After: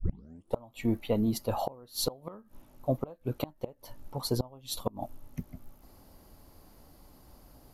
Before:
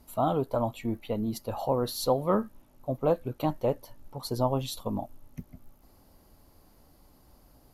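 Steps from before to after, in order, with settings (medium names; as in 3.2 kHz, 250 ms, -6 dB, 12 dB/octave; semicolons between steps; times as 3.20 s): tape start-up on the opening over 0.58 s; inverted gate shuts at -20 dBFS, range -26 dB; trim +3 dB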